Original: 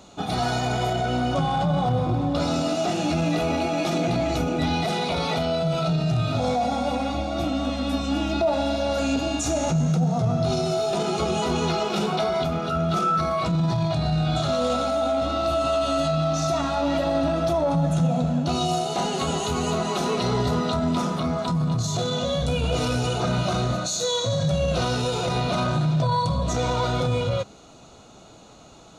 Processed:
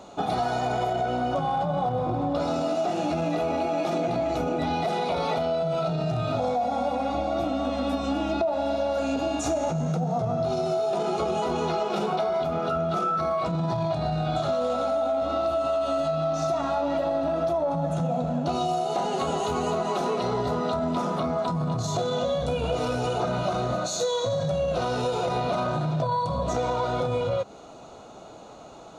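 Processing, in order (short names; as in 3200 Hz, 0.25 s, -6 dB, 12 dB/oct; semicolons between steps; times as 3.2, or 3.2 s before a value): bell 660 Hz +10.5 dB 2.6 oct; compressor, threshold -19 dBFS, peak gain reduction 11 dB; gain -4 dB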